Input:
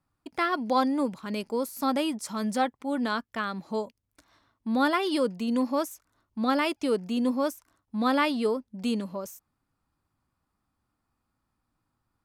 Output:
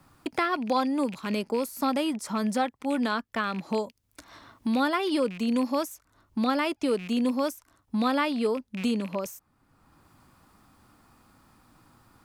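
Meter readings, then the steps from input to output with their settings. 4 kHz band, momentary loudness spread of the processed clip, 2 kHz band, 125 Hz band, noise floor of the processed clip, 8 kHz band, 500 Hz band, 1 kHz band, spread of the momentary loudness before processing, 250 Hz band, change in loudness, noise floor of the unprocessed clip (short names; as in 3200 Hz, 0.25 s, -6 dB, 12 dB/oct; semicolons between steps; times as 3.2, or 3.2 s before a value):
0.0 dB, 9 LU, 0.0 dB, n/a, -70 dBFS, +0.5 dB, 0.0 dB, -0.5 dB, 12 LU, +1.0 dB, 0.0 dB, -81 dBFS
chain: rattling part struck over -42 dBFS, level -34 dBFS; three-band squash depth 70%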